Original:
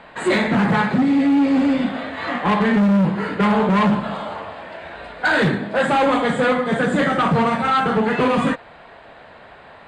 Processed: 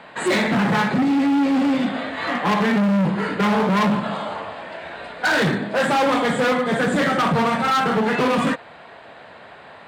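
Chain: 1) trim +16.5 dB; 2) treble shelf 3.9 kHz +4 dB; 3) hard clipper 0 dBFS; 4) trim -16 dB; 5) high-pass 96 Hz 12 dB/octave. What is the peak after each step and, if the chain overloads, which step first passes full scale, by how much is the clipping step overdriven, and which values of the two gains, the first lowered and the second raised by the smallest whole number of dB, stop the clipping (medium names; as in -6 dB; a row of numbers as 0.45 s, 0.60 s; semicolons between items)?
+5.0 dBFS, +6.0 dBFS, 0.0 dBFS, -16.0 dBFS, -10.0 dBFS; step 1, 6.0 dB; step 1 +10.5 dB, step 4 -10 dB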